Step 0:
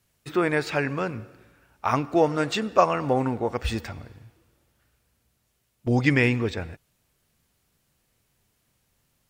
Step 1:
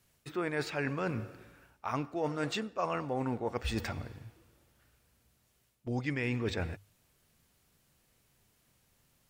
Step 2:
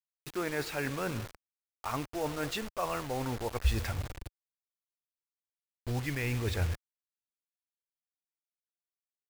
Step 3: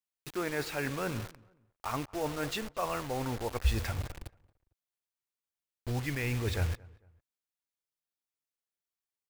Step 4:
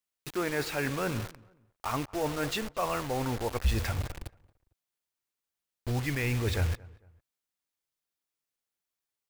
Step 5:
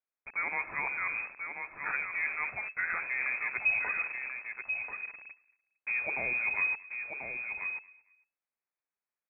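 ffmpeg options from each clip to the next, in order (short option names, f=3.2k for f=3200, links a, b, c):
-af "bandreject=f=50:t=h:w=6,bandreject=f=100:t=h:w=6,areverse,acompressor=threshold=-30dB:ratio=10,areverse"
-af "acrusher=bits=6:mix=0:aa=0.000001,asubboost=boost=7:cutoff=75"
-filter_complex "[0:a]asplit=2[a][b];[b]adelay=226,lowpass=f=1.9k:p=1,volume=-23dB,asplit=2[c][d];[d]adelay=226,lowpass=f=1.9k:p=1,volume=0.34[e];[a][c][e]amix=inputs=3:normalize=0"
-af "asoftclip=type=tanh:threshold=-21.5dB,volume=3.5dB"
-af "aecho=1:1:1037:0.473,lowpass=f=2.2k:t=q:w=0.5098,lowpass=f=2.2k:t=q:w=0.6013,lowpass=f=2.2k:t=q:w=0.9,lowpass=f=2.2k:t=q:w=2.563,afreqshift=-2600,volume=-2.5dB"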